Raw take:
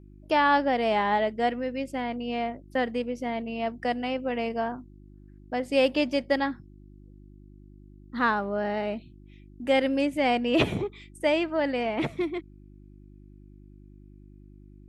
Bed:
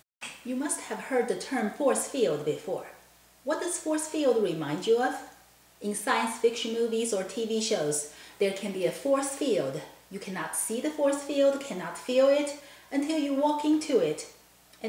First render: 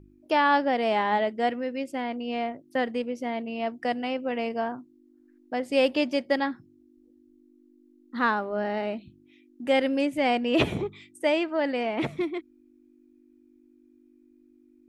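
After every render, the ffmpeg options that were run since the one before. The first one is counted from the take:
-af "bandreject=f=50:t=h:w=4,bandreject=f=100:t=h:w=4,bandreject=f=150:t=h:w=4,bandreject=f=200:t=h:w=4"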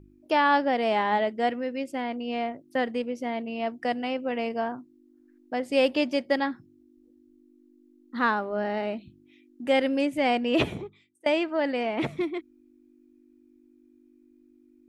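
-filter_complex "[0:a]asplit=2[a][b];[a]atrim=end=11.26,asetpts=PTS-STARTPTS,afade=t=out:st=10.54:d=0.72:c=qua:silence=0.0944061[c];[b]atrim=start=11.26,asetpts=PTS-STARTPTS,afade=t=in:d=0.004:c=hsin:silence=0.0944061[d];[c][d]concat=n=2:v=0:a=1"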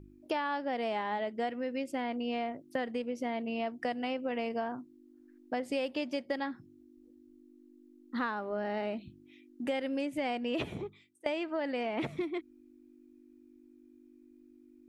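-af "acompressor=threshold=-31dB:ratio=6"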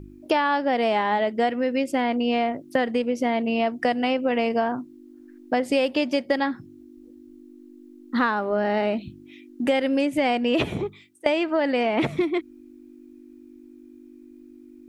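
-af "volume=11.5dB"

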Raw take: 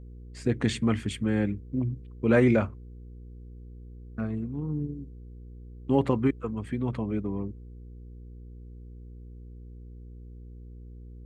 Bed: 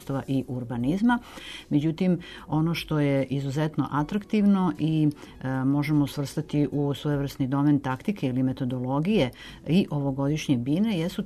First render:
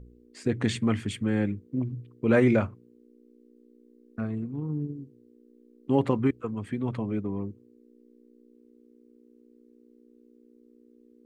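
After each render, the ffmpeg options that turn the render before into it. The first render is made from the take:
-af "bandreject=f=60:t=h:w=4,bandreject=f=120:t=h:w=4,bandreject=f=180:t=h:w=4"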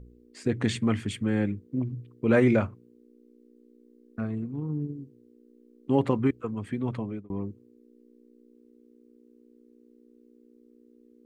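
-filter_complex "[0:a]asplit=2[a][b];[a]atrim=end=7.3,asetpts=PTS-STARTPTS,afade=t=out:st=6.85:d=0.45:c=qsin[c];[b]atrim=start=7.3,asetpts=PTS-STARTPTS,afade=t=in:d=0.004:c=hsin[d];[c][d]concat=n=2:v=0:a=1"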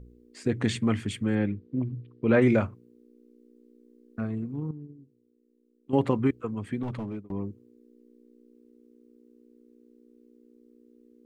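-filter_complex "[0:a]asettb=1/sr,asplit=3[a][b][c];[a]atrim=end=1.354[d];[b]atrim=start=1.35:end=2.42,asetpts=PTS-STARTPTS,afade=t=in:d=0.004:c=qsin,afade=t=out:st=1.066:d=0.004:c=qsin,lowpass=f=4.5k:w=0.5412,lowpass=f=4.5k:w=1.3066[e];[c]atrim=start=2.416[f];[d][e]acrossfade=d=0.004:c1=hsin:c2=qsin[g];[g][f]acrossfade=d=0.004:c1=qsin:c2=hsin,asettb=1/sr,asplit=3[h][i][j];[h]atrim=end=6.834[k];[i]atrim=start=6.83:end=7.32,asetpts=PTS-STARTPTS,afade=t=in:d=0.004:c=qsin,afade=t=out:st=0.486:d=0.004:c=qsin,volume=28.5dB,asoftclip=hard,volume=-28.5dB[l];[j]atrim=start=7.316[m];[k][l]acrossfade=d=0.004:c1=hsin:c2=qsin[n];[n][m]acrossfade=d=0.004:c1=qsin:c2=hsin,asplit=3[o][p][q];[o]atrim=end=4.712[r];[p]atrim=start=4.708:end=5.932,asetpts=PTS-STARTPTS,volume=-11dB[s];[q]atrim=start=5.928[t];[r][s]acrossfade=d=0.004:c1=hsin:c2=hsin[u];[u][t]acrossfade=d=0.004:c1=hsin:c2=hsin"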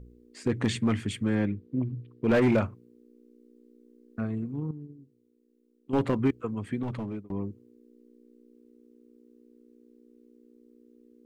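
-af "asoftclip=type=hard:threshold=-17.5dB"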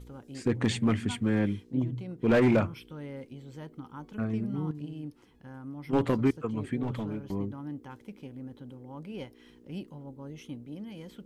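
-filter_complex "[1:a]volume=-17.5dB[a];[0:a][a]amix=inputs=2:normalize=0"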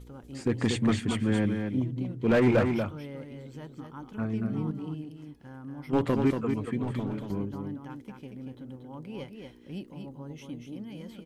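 -af "aecho=1:1:234:0.531"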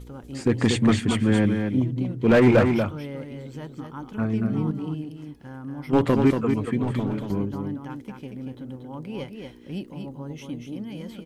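-af "volume=6dB"

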